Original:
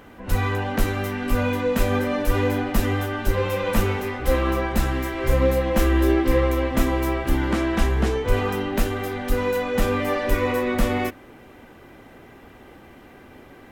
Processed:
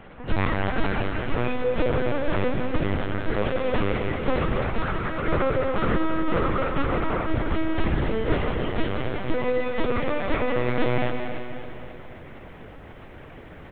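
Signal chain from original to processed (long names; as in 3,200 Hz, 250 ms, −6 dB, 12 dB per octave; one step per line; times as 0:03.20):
wavefolder on the positive side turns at −15.5 dBFS
repeating echo 179 ms, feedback 56%, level −8.5 dB
linear-prediction vocoder at 8 kHz pitch kept
speech leveller within 5 dB 2 s
0:04.78–0:07.30: parametric band 1,300 Hz +9.5 dB 0.41 octaves
feedback echo at a low word length 271 ms, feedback 55%, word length 10 bits, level −11 dB
level −3 dB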